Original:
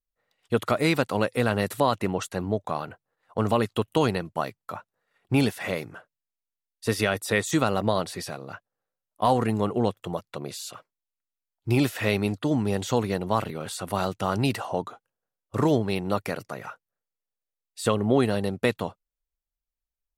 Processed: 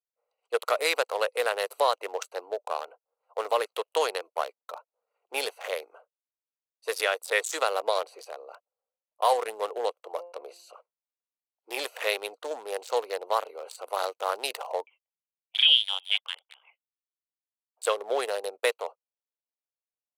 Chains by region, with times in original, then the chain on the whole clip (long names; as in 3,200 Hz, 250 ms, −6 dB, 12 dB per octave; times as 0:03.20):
0:10.11–0:10.73: hum removal 173.9 Hz, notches 16 + level that may fall only so fast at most 110 dB per second
0:14.86–0:17.82: voice inversion scrambler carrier 3,500 Hz + expander for the loud parts, over −39 dBFS
whole clip: adaptive Wiener filter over 25 samples; elliptic high-pass filter 470 Hz, stop band 70 dB; high-shelf EQ 4,600 Hz +11 dB